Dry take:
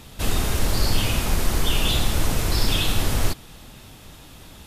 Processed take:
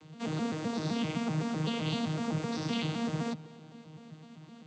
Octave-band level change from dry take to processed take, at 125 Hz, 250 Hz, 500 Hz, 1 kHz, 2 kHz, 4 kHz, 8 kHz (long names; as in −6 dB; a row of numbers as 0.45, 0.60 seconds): −9.5, −1.0, −6.5, −8.0, −12.0, −15.0, −20.0 decibels